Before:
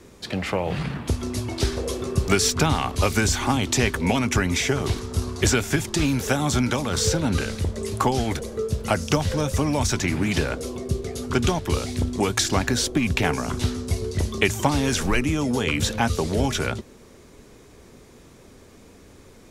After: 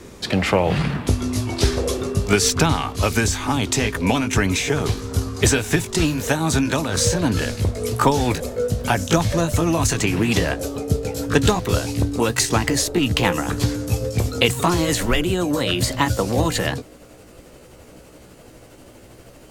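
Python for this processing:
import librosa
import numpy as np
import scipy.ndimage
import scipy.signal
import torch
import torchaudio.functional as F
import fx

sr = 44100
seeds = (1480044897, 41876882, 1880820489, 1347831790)

y = fx.pitch_glide(x, sr, semitones=4.0, runs='starting unshifted')
y = fx.rider(y, sr, range_db=4, speed_s=2.0)
y = y * librosa.db_to_amplitude(4.0)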